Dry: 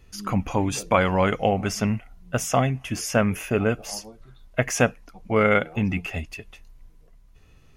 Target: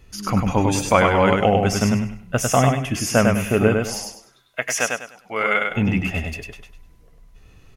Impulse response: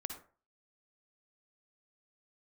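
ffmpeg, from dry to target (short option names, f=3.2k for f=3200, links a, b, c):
-filter_complex "[0:a]asettb=1/sr,asplit=3[a][b][c];[a]atrim=end=4.054[d];[b]atrim=start=4.05:end=5.7,asetpts=PTS-STARTPTS,afade=t=in:d=0.004:c=qsin,afade=t=out:st=1.646:d=0.004:c=qsin,highpass=f=1.4k:p=1[e];[c]atrim=start=5.696[f];[d][e]acrossfade=d=0.004:c1=hsin:c2=qsin[g];[g][f]acrossfade=d=0.004:c1=qsin:c2=hsin,aecho=1:1:100|200|300|400:0.668|0.187|0.0524|0.0147,volume=3.5dB"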